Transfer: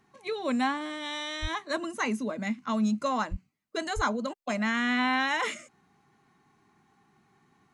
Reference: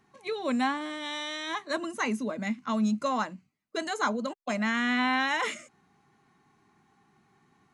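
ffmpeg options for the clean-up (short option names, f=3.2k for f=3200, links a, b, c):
-filter_complex "[0:a]asplit=3[a][b][c];[a]afade=t=out:st=1.41:d=0.02[d];[b]highpass=f=140:w=0.5412,highpass=f=140:w=1.3066,afade=t=in:st=1.41:d=0.02,afade=t=out:st=1.53:d=0.02[e];[c]afade=t=in:st=1.53:d=0.02[f];[d][e][f]amix=inputs=3:normalize=0,asplit=3[g][h][i];[g]afade=t=out:st=3.3:d=0.02[j];[h]highpass=f=140:w=0.5412,highpass=f=140:w=1.3066,afade=t=in:st=3.3:d=0.02,afade=t=out:st=3.42:d=0.02[k];[i]afade=t=in:st=3.42:d=0.02[l];[j][k][l]amix=inputs=3:normalize=0,asplit=3[m][n][o];[m]afade=t=out:st=3.95:d=0.02[p];[n]highpass=f=140:w=0.5412,highpass=f=140:w=1.3066,afade=t=in:st=3.95:d=0.02,afade=t=out:st=4.07:d=0.02[q];[o]afade=t=in:st=4.07:d=0.02[r];[p][q][r]amix=inputs=3:normalize=0"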